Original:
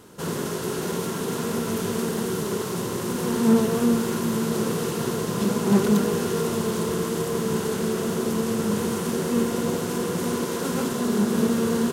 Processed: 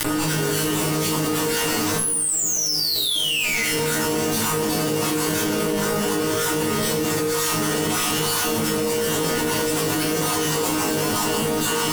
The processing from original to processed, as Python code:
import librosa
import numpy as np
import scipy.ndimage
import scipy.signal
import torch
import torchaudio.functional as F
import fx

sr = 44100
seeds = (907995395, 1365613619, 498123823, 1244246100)

y = fx.spec_dropout(x, sr, seeds[0], share_pct=34)
y = fx.low_shelf(y, sr, hz=86.0, db=-11.0)
y = np.maximum(y, 0.0)
y = fx.spec_paint(y, sr, seeds[1], shape='fall', start_s=1.98, length_s=1.65, low_hz=2000.0, high_hz=11000.0, level_db=-24.0)
y = fx.fuzz(y, sr, gain_db=49.0, gate_db=-53.0)
y = fx.resonator_bank(y, sr, root=44, chord='fifth', decay_s=0.35)
y = fx.rev_fdn(y, sr, rt60_s=0.64, lf_ratio=1.4, hf_ratio=0.9, size_ms=20.0, drr_db=-3.0)
y = fx.env_flatten(y, sr, amount_pct=100)
y = y * librosa.db_to_amplitude(-4.0)